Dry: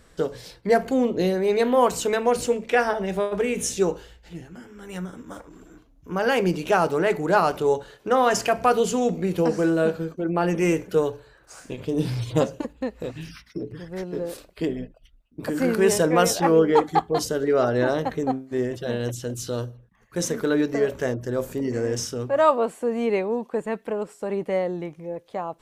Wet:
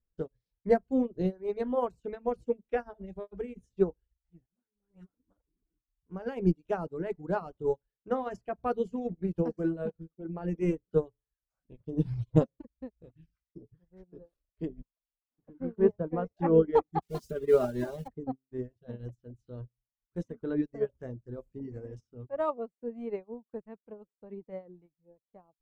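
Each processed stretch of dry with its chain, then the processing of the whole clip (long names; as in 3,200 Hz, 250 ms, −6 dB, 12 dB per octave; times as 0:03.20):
0:04.46–0:05.20: mu-law and A-law mismatch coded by A + low-shelf EQ 93 Hz −6 dB + all-pass dispersion highs, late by 72 ms, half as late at 1,400 Hz
0:14.82–0:16.37: spike at every zero crossing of −14 dBFS + low-pass filter 1,300 Hz + expander for the loud parts, over −40 dBFS
0:17.02–0:18.08: spike at every zero crossing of −19.5 dBFS + high-shelf EQ 2,600 Hz +7 dB + comb filter 5 ms, depth 68%
whole clip: spectral tilt −4 dB per octave; reverb reduction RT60 0.82 s; expander for the loud parts 2.5 to 1, over −35 dBFS; level −6.5 dB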